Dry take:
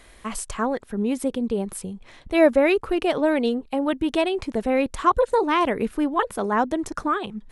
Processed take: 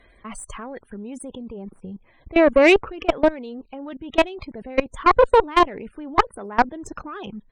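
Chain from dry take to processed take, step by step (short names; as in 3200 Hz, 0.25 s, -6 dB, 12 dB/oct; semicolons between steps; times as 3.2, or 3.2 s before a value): level quantiser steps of 19 dB; downsampling 22050 Hz; loudest bins only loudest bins 64; added harmonics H 2 -13 dB, 6 -25 dB, 7 -29 dB, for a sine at -10 dBFS; 1.43–2.52 air absorption 280 m; gain +7 dB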